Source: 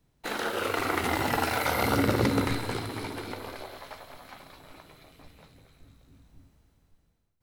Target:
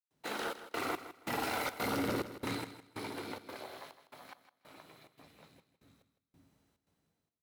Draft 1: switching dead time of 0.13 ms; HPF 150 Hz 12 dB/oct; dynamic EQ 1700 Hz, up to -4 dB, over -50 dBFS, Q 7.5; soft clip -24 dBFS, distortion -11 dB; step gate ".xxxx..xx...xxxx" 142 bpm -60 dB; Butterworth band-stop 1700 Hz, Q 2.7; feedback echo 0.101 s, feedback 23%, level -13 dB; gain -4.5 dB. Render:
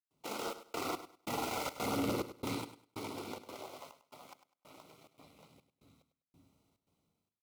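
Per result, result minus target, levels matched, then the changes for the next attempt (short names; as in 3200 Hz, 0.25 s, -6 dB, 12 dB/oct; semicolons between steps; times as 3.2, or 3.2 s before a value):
switching dead time: distortion +16 dB; echo 59 ms early; 2000 Hz band -4.5 dB
change: switching dead time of 0.026 ms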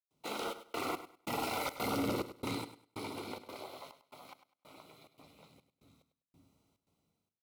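echo 59 ms early; 2000 Hz band -3.5 dB
change: feedback echo 0.16 s, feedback 23%, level -13 dB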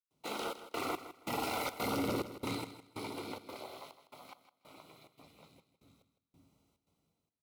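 2000 Hz band -3.0 dB
remove: Butterworth band-stop 1700 Hz, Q 2.7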